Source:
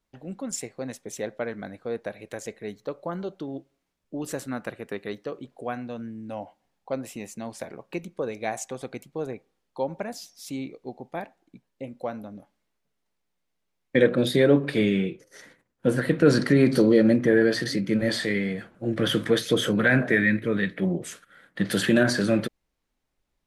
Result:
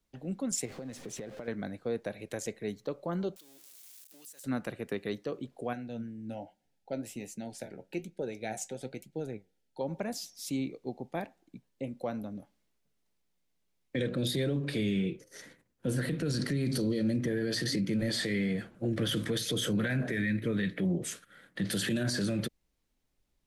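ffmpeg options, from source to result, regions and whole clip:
-filter_complex "[0:a]asettb=1/sr,asplit=3[s0][s1][s2];[s0]atrim=end=0.654[s3];[s1]atrim=start=0.65:end=1.48,asetpts=PTS-STARTPTS,afade=t=in:d=0.004:c=qsin,afade=t=out:st=0.826:d=0.004:c=qsin,aeval=exprs='val(0)+0.5*0.00944*sgn(val(0))':c=same,aemphasis=mode=reproduction:type=50kf,acompressor=threshold=0.0158:ratio=10:attack=3.2:release=140:knee=1:detection=peak[s4];[s2]atrim=start=1.476[s5];[s3][s4]acrossfade=d=0.004:c1=hsin:c2=qsin[s6];[s6][s5]acrossfade=d=0.004:c1=qsin:c2=hsin,asettb=1/sr,asplit=3[s7][s8][s9];[s7]atrim=end=3.364[s10];[s8]atrim=start=3.36:end=4.44,asetpts=PTS-STARTPTS,afade=t=in:d=0.004:c=qsin,afade=t=out:st=1.076:d=0.004:c=qsin,aeval=exprs='val(0)+0.5*0.00944*sgn(val(0))':c=same,aderivative,acompressor=threshold=0.00398:ratio=6:attack=3.2:release=140:knee=1:detection=peak[s11];[s9]atrim=start=4.436[s12];[s10][s11]acrossfade=d=0.004:c1=hsin:c2=qsin[s13];[s13][s12]acrossfade=d=0.004:c1=qsin:c2=hsin,asettb=1/sr,asplit=3[s14][s15][s16];[s14]atrim=end=5.734[s17];[s15]atrim=start=5.73:end=9.81,asetpts=PTS-STARTPTS,afade=t=in:d=0.004:c=qsin,afade=t=out:st=4.076:d=0.004:c=qsin,flanger=delay=4.8:depth=6.4:regen=67:speed=1.2:shape=triangular,asuperstop=centerf=1100:order=8:qfactor=3.3[s18];[s16]atrim=start=9.806[s19];[s17][s18]acrossfade=d=0.004:c1=hsin:c2=qsin[s20];[s20][s19]acrossfade=d=0.004:c1=qsin:c2=hsin,equalizer=f=1100:w=0.49:g=-6,acrossover=split=150|3000[s21][s22][s23];[s22]acompressor=threshold=0.0398:ratio=6[s24];[s21][s24][s23]amix=inputs=3:normalize=0,alimiter=level_in=1.06:limit=0.0631:level=0:latency=1:release=34,volume=0.944,volume=1.19"

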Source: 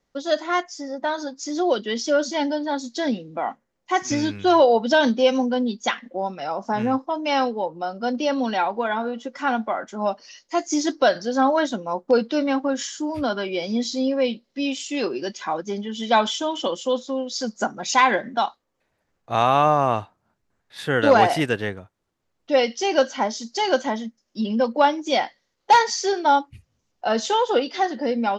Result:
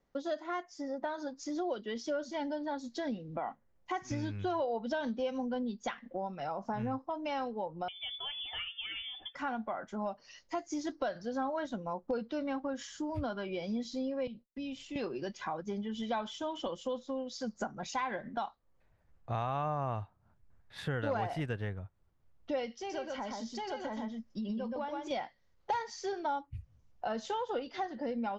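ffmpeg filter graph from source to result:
-filter_complex "[0:a]asettb=1/sr,asplit=3[s0][s1][s2];[s0]atrim=end=7.884[s3];[s1]atrim=start=7.88:end=9.35,asetpts=PTS-STARTPTS,afade=t=in:d=0.004:c=qsin,afade=t=out:st=1.466:d=0.004:c=qsin,bandreject=f=211:t=h:w=4,bandreject=f=422:t=h:w=4,bandreject=f=633:t=h:w=4,bandreject=f=844:t=h:w=4,bandreject=f=1055:t=h:w=4,bandreject=f=1266:t=h:w=4,bandreject=f=1477:t=h:w=4,bandreject=f=1688:t=h:w=4,bandreject=f=1899:t=h:w=4,bandreject=f=2110:t=h:w=4,bandreject=f=2321:t=h:w=4,lowpass=f=3100:t=q:w=0.5098,lowpass=f=3100:t=q:w=0.6013,lowpass=f=3100:t=q:w=0.9,lowpass=f=3100:t=q:w=2.563,afreqshift=-3700[s4];[s2]atrim=start=9.346[s5];[s3][s4]acrossfade=d=0.004:c1=hsin:c2=qsin[s6];[s6][s5]acrossfade=d=0.004:c1=qsin:c2=hsin,asettb=1/sr,asplit=3[s7][s8][s9];[s7]atrim=end=14.274[s10];[s8]atrim=start=14.27:end=14.96,asetpts=PTS-STARTPTS,afade=t=in:d=0.004:c=qsin,afade=t=out:st=0.686:d=0.004:c=qsin,agate=range=0.0224:threshold=0.00398:ratio=3:release=100:detection=peak,lowpass=f=1800:p=1,acrossover=split=190|3000[s11][s12][s13];[s12]acompressor=threshold=0.00891:ratio=3:attack=3.2:release=140:knee=2.83:detection=peak[s14];[s11][s14][s13]amix=inputs=3:normalize=0[s15];[s9]atrim=start=14.956[s16];[s10][s15]acrossfade=d=0.004:c1=hsin:c2=qsin[s17];[s17][s16]acrossfade=d=0.004:c1=qsin:c2=hsin,asettb=1/sr,asplit=3[s18][s19][s20];[s18]atrim=end=22.764[s21];[s19]atrim=start=22.76:end=25.11,asetpts=PTS-STARTPTS,afade=t=in:d=0.004:c=qsin,afade=t=out:st=2.346:d=0.004:c=qsin,bandreject=f=6400:w=27,acompressor=threshold=0.0282:ratio=2.5:attack=3.2:release=140:knee=1:detection=peak,aecho=1:1:124:0.668,atrim=end_sample=103635[s22];[s20]atrim=start=25.106[s23];[s21][s22]acrossfade=d=0.004:c1=hsin:c2=qsin[s24];[s24][s23]acrossfade=d=0.004:c1=qsin:c2=hsin,asubboost=boost=5:cutoff=120,acompressor=threshold=0.02:ratio=3,highshelf=f=2800:g=-11.5,volume=0.841"

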